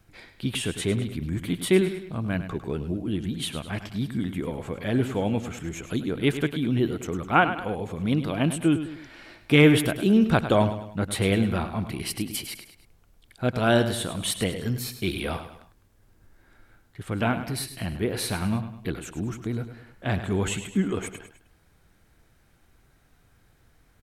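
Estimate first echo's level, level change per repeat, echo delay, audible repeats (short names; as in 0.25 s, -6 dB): -11.0 dB, -7.0 dB, 0.103 s, 3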